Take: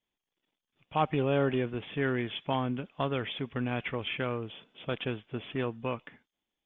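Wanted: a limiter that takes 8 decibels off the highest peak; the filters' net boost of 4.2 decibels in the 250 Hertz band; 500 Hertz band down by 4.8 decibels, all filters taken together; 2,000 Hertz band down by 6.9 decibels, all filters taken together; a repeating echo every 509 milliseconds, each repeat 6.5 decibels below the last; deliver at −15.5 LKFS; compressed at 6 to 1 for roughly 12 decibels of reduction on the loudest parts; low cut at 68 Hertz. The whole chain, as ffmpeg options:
ffmpeg -i in.wav -af "highpass=68,equalizer=frequency=250:width_type=o:gain=7,equalizer=frequency=500:width_type=o:gain=-8.5,equalizer=frequency=2000:width_type=o:gain=-9,acompressor=threshold=-37dB:ratio=6,alimiter=level_in=8dB:limit=-24dB:level=0:latency=1,volume=-8dB,aecho=1:1:509|1018|1527|2036|2545|3054:0.473|0.222|0.105|0.0491|0.0231|0.0109,volume=27.5dB" out.wav

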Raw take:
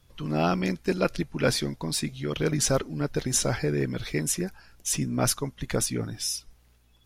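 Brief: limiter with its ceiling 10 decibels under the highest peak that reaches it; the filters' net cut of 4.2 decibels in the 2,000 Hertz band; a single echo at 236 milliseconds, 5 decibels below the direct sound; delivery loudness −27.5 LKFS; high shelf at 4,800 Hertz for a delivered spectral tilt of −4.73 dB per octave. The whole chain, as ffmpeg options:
ffmpeg -i in.wav -af "equalizer=frequency=2000:width_type=o:gain=-4.5,highshelf=frequency=4800:gain=-7,alimiter=limit=-22dB:level=0:latency=1,aecho=1:1:236:0.562,volume=4.5dB" out.wav

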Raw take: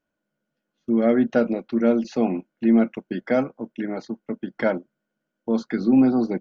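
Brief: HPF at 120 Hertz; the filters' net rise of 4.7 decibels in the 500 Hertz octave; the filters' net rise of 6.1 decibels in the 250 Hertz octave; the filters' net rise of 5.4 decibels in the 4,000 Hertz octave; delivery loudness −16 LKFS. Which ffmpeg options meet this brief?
ffmpeg -i in.wav -af "highpass=120,equalizer=frequency=250:width_type=o:gain=6,equalizer=frequency=500:width_type=o:gain=4,equalizer=frequency=4000:width_type=o:gain=6.5,volume=0.5dB" out.wav

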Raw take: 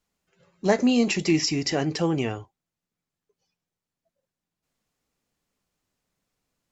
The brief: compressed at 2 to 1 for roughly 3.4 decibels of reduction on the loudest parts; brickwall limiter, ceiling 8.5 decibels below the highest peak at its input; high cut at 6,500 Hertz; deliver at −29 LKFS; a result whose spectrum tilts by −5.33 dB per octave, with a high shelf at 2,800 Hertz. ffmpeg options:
ffmpeg -i in.wav -af "lowpass=6500,highshelf=frequency=2800:gain=-5,acompressor=threshold=-22dB:ratio=2,volume=0.5dB,alimiter=limit=-19dB:level=0:latency=1" out.wav

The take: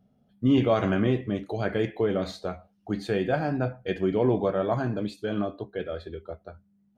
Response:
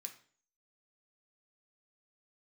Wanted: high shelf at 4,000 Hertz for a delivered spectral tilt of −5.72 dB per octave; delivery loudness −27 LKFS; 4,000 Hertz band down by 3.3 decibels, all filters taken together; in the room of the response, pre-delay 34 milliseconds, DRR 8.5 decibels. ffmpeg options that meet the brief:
-filter_complex "[0:a]highshelf=frequency=4000:gain=4.5,equalizer=frequency=4000:width_type=o:gain=-7,asplit=2[link_01][link_02];[1:a]atrim=start_sample=2205,adelay=34[link_03];[link_02][link_03]afir=irnorm=-1:irlink=0,volume=-2.5dB[link_04];[link_01][link_04]amix=inputs=2:normalize=0"

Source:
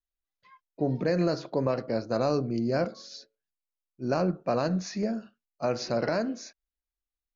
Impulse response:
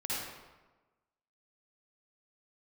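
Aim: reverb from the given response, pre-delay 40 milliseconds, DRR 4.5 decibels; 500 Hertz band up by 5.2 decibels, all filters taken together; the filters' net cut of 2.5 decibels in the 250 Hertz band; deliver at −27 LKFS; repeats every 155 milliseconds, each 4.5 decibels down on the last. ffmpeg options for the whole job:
-filter_complex "[0:a]equalizer=frequency=250:width_type=o:gain=-6,equalizer=frequency=500:width_type=o:gain=7.5,aecho=1:1:155|310|465|620|775|930|1085|1240|1395:0.596|0.357|0.214|0.129|0.0772|0.0463|0.0278|0.0167|0.01,asplit=2[link_01][link_02];[1:a]atrim=start_sample=2205,adelay=40[link_03];[link_02][link_03]afir=irnorm=-1:irlink=0,volume=-9.5dB[link_04];[link_01][link_04]amix=inputs=2:normalize=0,volume=-3dB"

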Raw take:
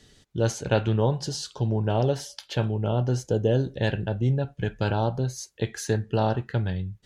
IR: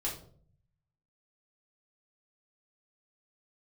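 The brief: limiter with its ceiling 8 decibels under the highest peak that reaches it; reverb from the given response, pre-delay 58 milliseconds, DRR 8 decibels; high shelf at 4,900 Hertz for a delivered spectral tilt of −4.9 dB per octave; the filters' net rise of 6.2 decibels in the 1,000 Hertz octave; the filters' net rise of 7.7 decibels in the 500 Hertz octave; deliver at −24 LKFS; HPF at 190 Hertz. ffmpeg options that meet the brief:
-filter_complex "[0:a]highpass=190,equalizer=frequency=500:width_type=o:gain=8,equalizer=frequency=1000:width_type=o:gain=4.5,highshelf=frequency=4900:gain=6.5,alimiter=limit=-11.5dB:level=0:latency=1,asplit=2[link_01][link_02];[1:a]atrim=start_sample=2205,adelay=58[link_03];[link_02][link_03]afir=irnorm=-1:irlink=0,volume=-11dB[link_04];[link_01][link_04]amix=inputs=2:normalize=0,volume=0.5dB"

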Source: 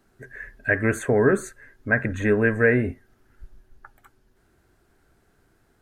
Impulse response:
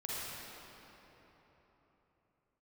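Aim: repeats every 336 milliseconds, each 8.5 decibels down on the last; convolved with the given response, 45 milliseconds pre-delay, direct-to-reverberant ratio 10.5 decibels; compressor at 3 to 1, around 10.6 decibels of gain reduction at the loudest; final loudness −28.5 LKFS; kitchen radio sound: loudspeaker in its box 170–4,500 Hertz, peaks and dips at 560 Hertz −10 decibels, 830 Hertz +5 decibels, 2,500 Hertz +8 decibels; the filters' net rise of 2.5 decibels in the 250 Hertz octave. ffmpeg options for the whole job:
-filter_complex "[0:a]equalizer=frequency=250:width_type=o:gain=4.5,acompressor=threshold=-27dB:ratio=3,aecho=1:1:336|672|1008|1344:0.376|0.143|0.0543|0.0206,asplit=2[link_01][link_02];[1:a]atrim=start_sample=2205,adelay=45[link_03];[link_02][link_03]afir=irnorm=-1:irlink=0,volume=-13.5dB[link_04];[link_01][link_04]amix=inputs=2:normalize=0,highpass=170,equalizer=frequency=560:width_type=q:width=4:gain=-10,equalizer=frequency=830:width_type=q:width=4:gain=5,equalizer=frequency=2500:width_type=q:width=4:gain=8,lowpass=frequency=4500:width=0.5412,lowpass=frequency=4500:width=1.3066,volume=2dB"

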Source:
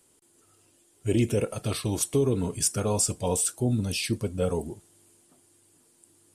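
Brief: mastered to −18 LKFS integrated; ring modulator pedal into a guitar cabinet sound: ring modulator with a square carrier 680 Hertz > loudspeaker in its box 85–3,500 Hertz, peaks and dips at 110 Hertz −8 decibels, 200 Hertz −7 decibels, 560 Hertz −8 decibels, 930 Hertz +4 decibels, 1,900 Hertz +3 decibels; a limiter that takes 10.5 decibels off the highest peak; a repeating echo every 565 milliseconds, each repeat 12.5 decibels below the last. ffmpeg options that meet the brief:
ffmpeg -i in.wav -af "alimiter=limit=-21.5dB:level=0:latency=1,aecho=1:1:565|1130|1695:0.237|0.0569|0.0137,aeval=exprs='val(0)*sgn(sin(2*PI*680*n/s))':channel_layout=same,highpass=85,equalizer=frequency=110:width_type=q:width=4:gain=-8,equalizer=frequency=200:width_type=q:width=4:gain=-7,equalizer=frequency=560:width_type=q:width=4:gain=-8,equalizer=frequency=930:width_type=q:width=4:gain=4,equalizer=frequency=1900:width_type=q:width=4:gain=3,lowpass=frequency=3500:width=0.5412,lowpass=frequency=3500:width=1.3066,volume=14dB" out.wav

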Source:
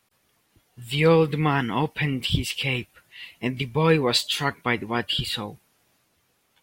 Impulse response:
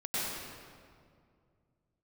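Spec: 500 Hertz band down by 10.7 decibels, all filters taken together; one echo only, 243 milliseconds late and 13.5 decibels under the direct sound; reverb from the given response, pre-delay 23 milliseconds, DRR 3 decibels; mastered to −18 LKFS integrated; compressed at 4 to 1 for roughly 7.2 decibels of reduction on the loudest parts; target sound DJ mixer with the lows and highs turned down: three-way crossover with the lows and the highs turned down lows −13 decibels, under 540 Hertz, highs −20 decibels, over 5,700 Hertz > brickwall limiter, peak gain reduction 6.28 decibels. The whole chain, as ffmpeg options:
-filter_complex "[0:a]equalizer=frequency=500:width_type=o:gain=-5.5,acompressor=threshold=-26dB:ratio=4,aecho=1:1:243:0.211,asplit=2[link_01][link_02];[1:a]atrim=start_sample=2205,adelay=23[link_03];[link_02][link_03]afir=irnorm=-1:irlink=0,volume=-10dB[link_04];[link_01][link_04]amix=inputs=2:normalize=0,acrossover=split=540 5700:gain=0.224 1 0.1[link_05][link_06][link_07];[link_05][link_06][link_07]amix=inputs=3:normalize=0,volume=15dB,alimiter=limit=-7dB:level=0:latency=1"

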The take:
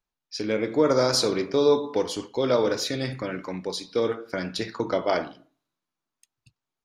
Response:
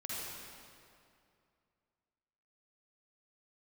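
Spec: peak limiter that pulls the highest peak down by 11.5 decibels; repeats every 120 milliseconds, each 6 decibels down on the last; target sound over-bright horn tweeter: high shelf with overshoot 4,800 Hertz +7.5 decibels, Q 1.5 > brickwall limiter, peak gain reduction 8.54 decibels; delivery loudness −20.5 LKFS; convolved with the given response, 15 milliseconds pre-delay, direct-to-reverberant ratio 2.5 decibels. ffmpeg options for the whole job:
-filter_complex "[0:a]alimiter=limit=-20.5dB:level=0:latency=1,aecho=1:1:120|240|360|480|600|720:0.501|0.251|0.125|0.0626|0.0313|0.0157,asplit=2[link_01][link_02];[1:a]atrim=start_sample=2205,adelay=15[link_03];[link_02][link_03]afir=irnorm=-1:irlink=0,volume=-4.5dB[link_04];[link_01][link_04]amix=inputs=2:normalize=0,highshelf=frequency=4800:width_type=q:width=1.5:gain=7.5,volume=9dB,alimiter=limit=-11dB:level=0:latency=1"

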